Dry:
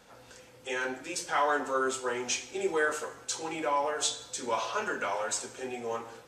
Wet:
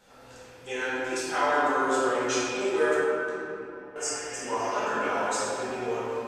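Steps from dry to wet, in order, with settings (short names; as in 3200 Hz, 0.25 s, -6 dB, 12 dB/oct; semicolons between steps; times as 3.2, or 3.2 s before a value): 3.93–4.7 spectral repair 1600–4600 Hz before; 2.94–3.96 flipped gate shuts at -38 dBFS, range -29 dB; shoebox room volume 140 m³, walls hard, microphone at 1.2 m; gain -5 dB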